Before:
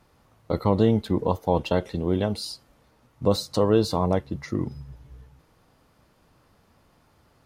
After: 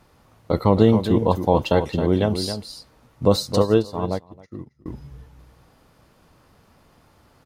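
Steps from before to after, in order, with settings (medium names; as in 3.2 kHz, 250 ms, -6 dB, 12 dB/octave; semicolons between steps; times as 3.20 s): on a send: delay 269 ms -9 dB; 3.62–4.86 s: on the sum: upward expansion 2.5:1, over -39 dBFS; trim +4.5 dB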